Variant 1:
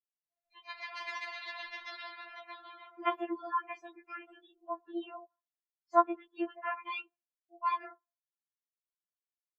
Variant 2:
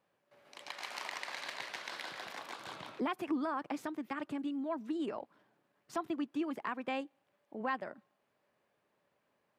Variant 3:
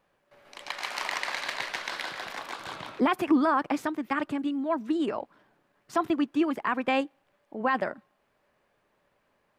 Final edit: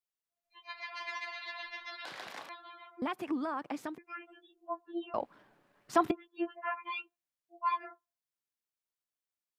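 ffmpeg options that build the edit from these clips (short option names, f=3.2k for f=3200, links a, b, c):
-filter_complex "[1:a]asplit=2[a][b];[0:a]asplit=4[c][d][e][f];[c]atrim=end=2.052[g];[a]atrim=start=2.048:end=2.492[h];[d]atrim=start=2.488:end=3.022[i];[b]atrim=start=3.018:end=3.982[j];[e]atrim=start=3.978:end=5.142[k];[2:a]atrim=start=5.138:end=6.112[l];[f]atrim=start=6.108[m];[g][h]acrossfade=d=0.004:c1=hsin:c2=hsin[n];[n][i]acrossfade=d=0.004:c1=hsin:c2=hsin[o];[o][j]acrossfade=d=0.004:c1=hsin:c2=hsin[p];[p][k]acrossfade=d=0.004:c1=hsin:c2=hsin[q];[q][l]acrossfade=d=0.004:c1=hsin:c2=hsin[r];[r][m]acrossfade=d=0.004:c1=hsin:c2=hsin"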